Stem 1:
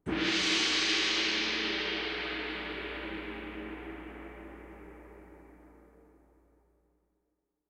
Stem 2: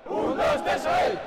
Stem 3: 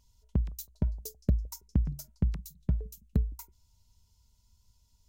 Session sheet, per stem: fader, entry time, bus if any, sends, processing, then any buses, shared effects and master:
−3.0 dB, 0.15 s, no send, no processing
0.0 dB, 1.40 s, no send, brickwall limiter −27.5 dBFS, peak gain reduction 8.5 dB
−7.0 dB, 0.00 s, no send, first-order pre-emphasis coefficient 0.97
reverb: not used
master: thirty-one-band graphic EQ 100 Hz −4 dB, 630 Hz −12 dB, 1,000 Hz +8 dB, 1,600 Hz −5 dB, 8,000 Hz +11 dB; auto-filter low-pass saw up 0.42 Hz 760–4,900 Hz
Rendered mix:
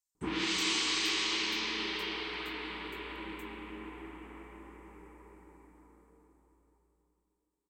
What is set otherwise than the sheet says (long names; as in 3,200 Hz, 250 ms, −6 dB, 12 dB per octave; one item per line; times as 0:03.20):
stem 2: muted
stem 3 −7.0 dB → −18.5 dB
master: missing auto-filter low-pass saw up 0.42 Hz 760–4,900 Hz